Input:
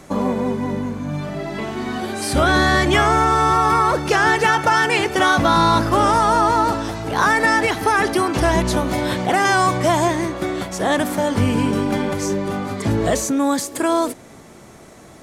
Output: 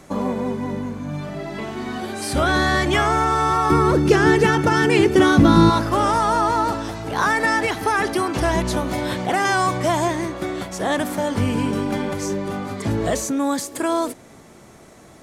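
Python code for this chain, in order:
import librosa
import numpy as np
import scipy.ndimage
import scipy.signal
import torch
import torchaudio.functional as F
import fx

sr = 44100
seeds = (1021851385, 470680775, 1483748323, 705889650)

y = fx.low_shelf_res(x, sr, hz=480.0, db=9.5, q=1.5, at=(3.7, 5.7))
y = y * librosa.db_to_amplitude(-3.0)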